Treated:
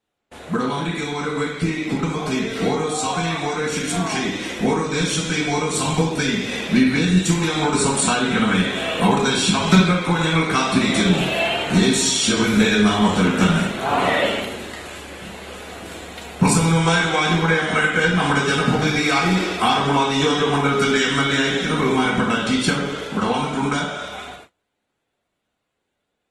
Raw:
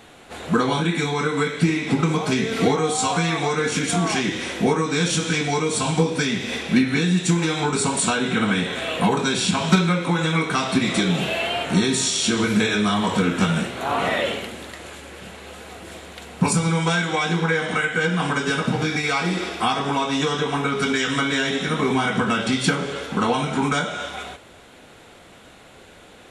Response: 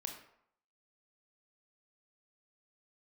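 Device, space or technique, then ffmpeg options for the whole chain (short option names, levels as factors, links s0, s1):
speakerphone in a meeting room: -filter_complex "[1:a]atrim=start_sample=2205[s0];[0:a][s0]afir=irnorm=-1:irlink=0,dynaudnorm=f=990:g=11:m=2.51,agate=range=0.0398:threshold=0.00794:ratio=16:detection=peak" -ar 48000 -c:a libopus -b:a 20k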